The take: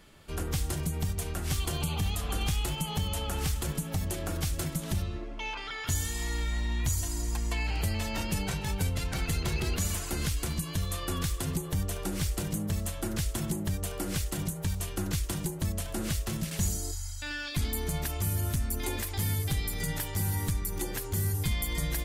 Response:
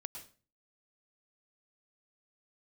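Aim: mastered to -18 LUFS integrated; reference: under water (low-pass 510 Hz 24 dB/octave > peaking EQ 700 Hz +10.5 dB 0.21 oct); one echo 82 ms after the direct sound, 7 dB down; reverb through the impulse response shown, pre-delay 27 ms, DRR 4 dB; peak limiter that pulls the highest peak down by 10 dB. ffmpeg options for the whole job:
-filter_complex "[0:a]alimiter=level_in=2.37:limit=0.0631:level=0:latency=1,volume=0.422,aecho=1:1:82:0.447,asplit=2[s0][s1];[1:a]atrim=start_sample=2205,adelay=27[s2];[s1][s2]afir=irnorm=-1:irlink=0,volume=0.891[s3];[s0][s3]amix=inputs=2:normalize=0,lowpass=f=510:w=0.5412,lowpass=f=510:w=1.3066,equalizer=f=700:t=o:w=0.21:g=10.5,volume=11.9"

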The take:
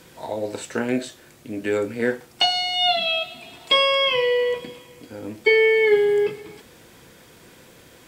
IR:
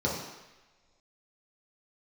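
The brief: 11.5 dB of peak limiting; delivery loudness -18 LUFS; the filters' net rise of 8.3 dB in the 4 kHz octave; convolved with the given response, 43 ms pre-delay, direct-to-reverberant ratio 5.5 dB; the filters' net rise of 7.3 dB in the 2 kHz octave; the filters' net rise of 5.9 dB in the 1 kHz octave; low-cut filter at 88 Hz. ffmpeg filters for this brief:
-filter_complex "[0:a]highpass=88,equalizer=f=1000:t=o:g=6.5,equalizer=f=2000:t=o:g=4.5,equalizer=f=4000:t=o:g=9,alimiter=limit=0.299:level=0:latency=1,asplit=2[s0][s1];[1:a]atrim=start_sample=2205,adelay=43[s2];[s1][s2]afir=irnorm=-1:irlink=0,volume=0.168[s3];[s0][s3]amix=inputs=2:normalize=0,volume=0.944"

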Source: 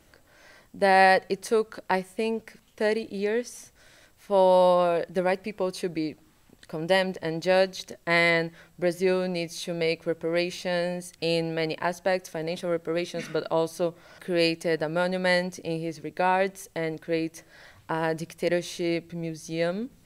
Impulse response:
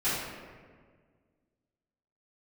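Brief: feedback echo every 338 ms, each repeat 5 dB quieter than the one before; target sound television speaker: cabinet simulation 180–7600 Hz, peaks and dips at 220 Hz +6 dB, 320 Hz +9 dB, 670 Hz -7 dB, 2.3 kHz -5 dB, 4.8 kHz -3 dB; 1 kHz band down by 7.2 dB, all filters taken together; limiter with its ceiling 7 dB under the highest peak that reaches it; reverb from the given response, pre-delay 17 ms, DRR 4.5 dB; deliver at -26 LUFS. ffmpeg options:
-filter_complex "[0:a]equalizer=f=1000:t=o:g=-6.5,alimiter=limit=0.15:level=0:latency=1,aecho=1:1:338|676|1014|1352|1690|2028|2366:0.562|0.315|0.176|0.0988|0.0553|0.031|0.0173,asplit=2[s0][s1];[1:a]atrim=start_sample=2205,adelay=17[s2];[s1][s2]afir=irnorm=-1:irlink=0,volume=0.178[s3];[s0][s3]amix=inputs=2:normalize=0,highpass=f=180:w=0.5412,highpass=f=180:w=1.3066,equalizer=f=220:t=q:w=4:g=6,equalizer=f=320:t=q:w=4:g=9,equalizer=f=670:t=q:w=4:g=-7,equalizer=f=2300:t=q:w=4:g=-5,equalizer=f=4800:t=q:w=4:g=-3,lowpass=f=7600:w=0.5412,lowpass=f=7600:w=1.3066,volume=0.891"

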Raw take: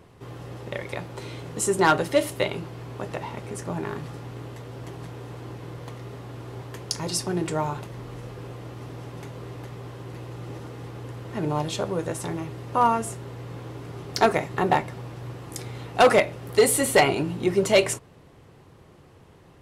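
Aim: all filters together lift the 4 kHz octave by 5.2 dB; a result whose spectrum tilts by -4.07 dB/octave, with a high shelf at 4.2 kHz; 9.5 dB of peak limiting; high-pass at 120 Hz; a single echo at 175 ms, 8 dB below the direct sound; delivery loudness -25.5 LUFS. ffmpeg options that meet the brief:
-af "highpass=120,equalizer=f=4000:t=o:g=9,highshelf=f=4200:g=-4,alimiter=limit=0.211:level=0:latency=1,aecho=1:1:175:0.398,volume=1.58"

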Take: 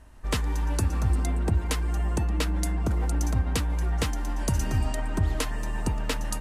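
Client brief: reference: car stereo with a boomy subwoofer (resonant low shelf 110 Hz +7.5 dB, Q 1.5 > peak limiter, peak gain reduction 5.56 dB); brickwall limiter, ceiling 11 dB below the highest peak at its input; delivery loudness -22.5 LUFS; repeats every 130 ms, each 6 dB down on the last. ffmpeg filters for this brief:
-af "alimiter=level_in=1.12:limit=0.0631:level=0:latency=1,volume=0.891,lowshelf=f=110:t=q:w=1.5:g=7.5,aecho=1:1:130|260|390|520|650|780:0.501|0.251|0.125|0.0626|0.0313|0.0157,volume=1.88,alimiter=limit=0.224:level=0:latency=1"

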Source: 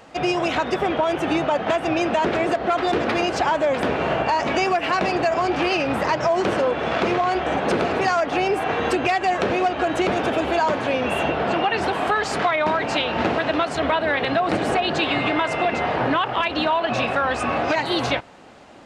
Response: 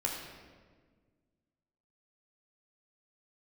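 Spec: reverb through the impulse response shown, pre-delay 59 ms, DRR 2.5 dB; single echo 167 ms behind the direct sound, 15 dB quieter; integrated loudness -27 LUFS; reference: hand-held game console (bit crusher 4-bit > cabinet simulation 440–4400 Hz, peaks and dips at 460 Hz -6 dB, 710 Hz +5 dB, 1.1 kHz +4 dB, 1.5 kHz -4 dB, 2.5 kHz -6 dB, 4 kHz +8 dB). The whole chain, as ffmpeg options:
-filter_complex "[0:a]aecho=1:1:167:0.178,asplit=2[s0][s1];[1:a]atrim=start_sample=2205,adelay=59[s2];[s1][s2]afir=irnorm=-1:irlink=0,volume=0.447[s3];[s0][s3]amix=inputs=2:normalize=0,acrusher=bits=3:mix=0:aa=0.000001,highpass=440,equalizer=f=460:t=q:w=4:g=-6,equalizer=f=710:t=q:w=4:g=5,equalizer=f=1100:t=q:w=4:g=4,equalizer=f=1500:t=q:w=4:g=-4,equalizer=f=2500:t=q:w=4:g=-6,equalizer=f=4000:t=q:w=4:g=8,lowpass=f=4400:w=0.5412,lowpass=f=4400:w=1.3066,volume=0.376"

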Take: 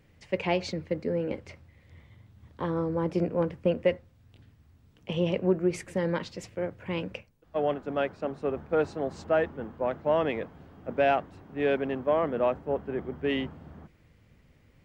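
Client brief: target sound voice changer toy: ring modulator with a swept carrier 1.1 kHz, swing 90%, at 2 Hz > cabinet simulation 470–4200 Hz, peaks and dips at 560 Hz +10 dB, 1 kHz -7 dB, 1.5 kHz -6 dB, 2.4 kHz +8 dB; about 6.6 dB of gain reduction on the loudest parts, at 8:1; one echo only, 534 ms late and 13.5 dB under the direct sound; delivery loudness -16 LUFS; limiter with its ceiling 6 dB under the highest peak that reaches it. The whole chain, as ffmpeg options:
-af "acompressor=threshold=0.0501:ratio=8,alimiter=limit=0.0631:level=0:latency=1,aecho=1:1:534:0.211,aeval=exprs='val(0)*sin(2*PI*1100*n/s+1100*0.9/2*sin(2*PI*2*n/s))':c=same,highpass=470,equalizer=f=560:t=q:w=4:g=10,equalizer=f=1000:t=q:w=4:g=-7,equalizer=f=1500:t=q:w=4:g=-6,equalizer=f=2400:t=q:w=4:g=8,lowpass=f=4200:w=0.5412,lowpass=f=4200:w=1.3066,volume=9.44"

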